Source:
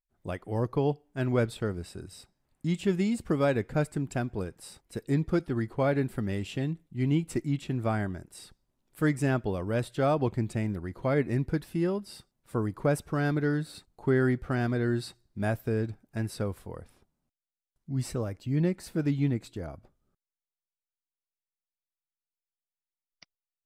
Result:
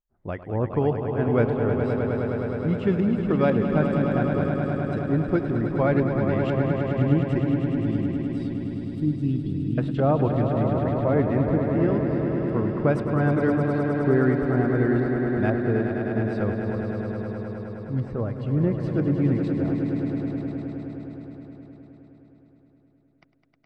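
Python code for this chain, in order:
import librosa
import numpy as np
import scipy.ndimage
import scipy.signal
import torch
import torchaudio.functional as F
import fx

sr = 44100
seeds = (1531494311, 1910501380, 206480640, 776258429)

y = fx.filter_lfo_lowpass(x, sr, shape='saw_up', hz=2.0, low_hz=850.0, high_hz=3200.0, q=0.8)
y = fx.ellip_bandstop(y, sr, low_hz=300.0, high_hz=3200.0, order=3, stop_db=40, at=(7.59, 9.78))
y = fx.echo_swell(y, sr, ms=104, loudest=5, wet_db=-8.5)
y = y * librosa.db_to_amplitude(3.5)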